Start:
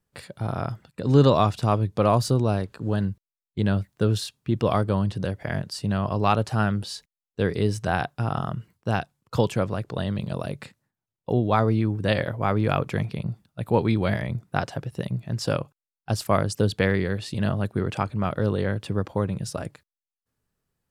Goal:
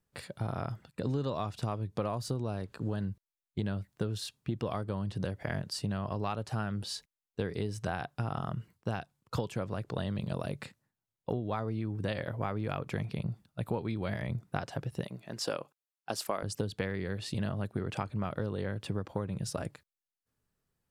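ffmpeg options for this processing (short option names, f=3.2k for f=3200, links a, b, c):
-filter_complex "[0:a]asettb=1/sr,asplit=3[a][b][c];[a]atrim=end=15.044[d];[b]atrim=start=15.04:end=16.43,asetpts=PTS-STARTPTS,afade=t=in:d=0.004:c=qsin,afade=t=out:st=1.386:d=0.004:c=qsin,highpass=310[e];[c]atrim=start=16.426[f];[d][e]acrossfade=d=0.004:c1=hsin:c2=qsin[g];[g][f]acrossfade=d=0.004:c1=qsin:c2=hsin,acompressor=threshold=-26dB:ratio=12,volume=-3dB"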